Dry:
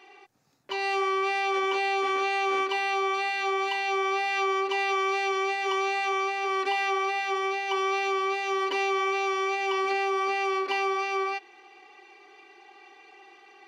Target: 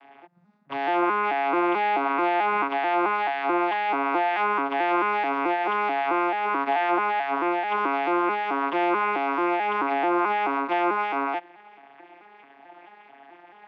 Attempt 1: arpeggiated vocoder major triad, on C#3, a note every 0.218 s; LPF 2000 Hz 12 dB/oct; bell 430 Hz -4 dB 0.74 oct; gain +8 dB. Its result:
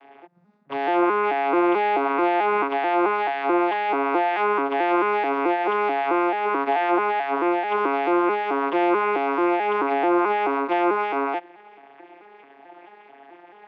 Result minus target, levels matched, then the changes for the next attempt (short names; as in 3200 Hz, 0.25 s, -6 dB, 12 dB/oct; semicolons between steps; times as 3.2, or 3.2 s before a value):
500 Hz band +3.0 dB
change: bell 430 Hz -12.5 dB 0.74 oct